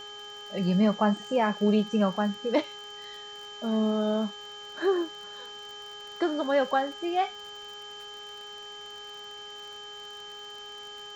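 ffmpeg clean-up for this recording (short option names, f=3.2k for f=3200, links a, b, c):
-af "adeclick=t=4,bandreject=f=413.6:t=h:w=4,bandreject=f=827.2:t=h:w=4,bandreject=f=1.2408k:t=h:w=4,bandreject=f=1.6544k:t=h:w=4,bandreject=f=3.1k:w=30,afftdn=nr=29:nf=-43"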